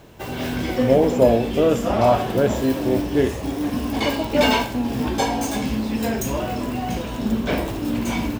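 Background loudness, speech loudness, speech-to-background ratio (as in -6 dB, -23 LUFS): -23.5 LUFS, -20.5 LUFS, 3.0 dB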